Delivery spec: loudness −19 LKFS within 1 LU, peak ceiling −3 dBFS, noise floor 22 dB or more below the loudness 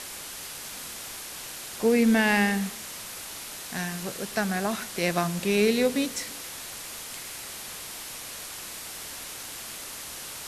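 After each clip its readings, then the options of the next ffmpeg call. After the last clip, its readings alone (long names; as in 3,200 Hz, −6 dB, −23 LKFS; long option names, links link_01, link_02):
background noise floor −39 dBFS; target noise floor −51 dBFS; integrated loudness −29.0 LKFS; sample peak −11.0 dBFS; target loudness −19.0 LKFS
→ -af "afftdn=noise_reduction=12:noise_floor=-39"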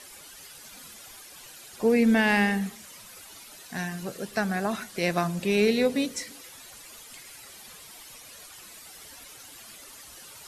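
background noise floor −47 dBFS; target noise floor −48 dBFS
→ -af "afftdn=noise_reduction=6:noise_floor=-47"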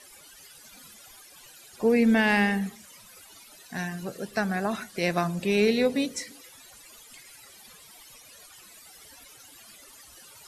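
background noise floor −51 dBFS; integrated loudness −26.0 LKFS; sample peak −11.5 dBFS; target loudness −19.0 LKFS
→ -af "volume=7dB"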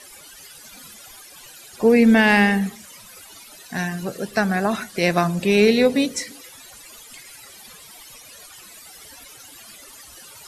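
integrated loudness −19.0 LKFS; sample peak −4.5 dBFS; background noise floor −44 dBFS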